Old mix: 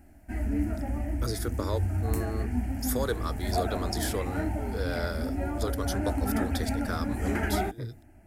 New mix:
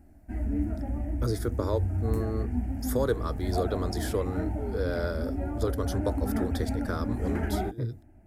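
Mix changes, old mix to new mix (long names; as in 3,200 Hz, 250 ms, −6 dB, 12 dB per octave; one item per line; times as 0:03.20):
background −5.5 dB
master: add tilt shelving filter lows +5.5 dB, about 1,100 Hz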